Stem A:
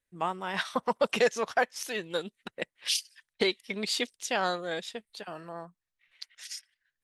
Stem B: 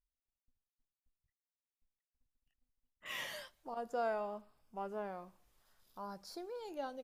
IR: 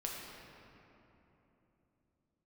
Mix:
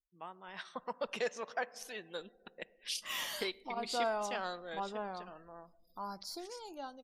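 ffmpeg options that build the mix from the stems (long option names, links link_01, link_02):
-filter_complex "[0:a]volume=-17dB,asplit=2[link_01][link_02];[link_02]volume=-17dB[link_03];[1:a]equalizer=frequency=125:width_type=o:width=1:gain=-9,equalizer=frequency=500:width_type=o:width=1:gain=-10,equalizer=frequency=2000:width_type=o:width=1:gain=-8,volume=3dB[link_04];[2:a]atrim=start_sample=2205[link_05];[link_03][link_05]afir=irnorm=-1:irlink=0[link_06];[link_01][link_04][link_06]amix=inputs=3:normalize=0,afftdn=noise_reduction=32:noise_floor=-67,lowshelf=frequency=270:gain=-5,dynaudnorm=framelen=310:gausssize=5:maxgain=6dB"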